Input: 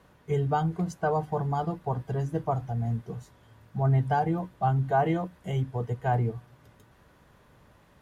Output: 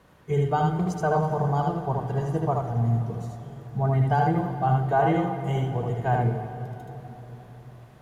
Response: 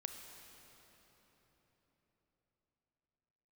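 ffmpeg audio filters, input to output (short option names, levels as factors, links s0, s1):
-filter_complex "[0:a]asplit=2[s0][s1];[1:a]atrim=start_sample=2205,asetrate=48510,aresample=44100,adelay=77[s2];[s1][s2]afir=irnorm=-1:irlink=0,volume=1.26[s3];[s0][s3]amix=inputs=2:normalize=0,volume=1.19"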